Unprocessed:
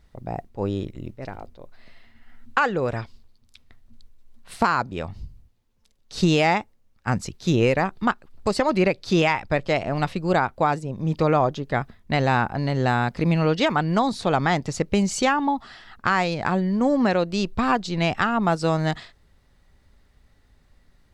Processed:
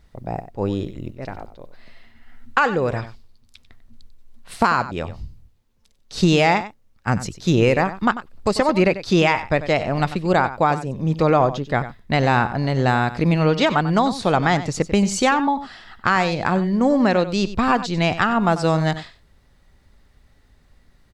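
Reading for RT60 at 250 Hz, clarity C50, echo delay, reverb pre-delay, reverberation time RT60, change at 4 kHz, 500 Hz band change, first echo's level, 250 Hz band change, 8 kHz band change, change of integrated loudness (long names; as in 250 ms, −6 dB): no reverb audible, no reverb audible, 94 ms, no reverb audible, no reverb audible, +3.0 dB, +3.0 dB, −13.5 dB, +3.0 dB, +3.0 dB, +3.0 dB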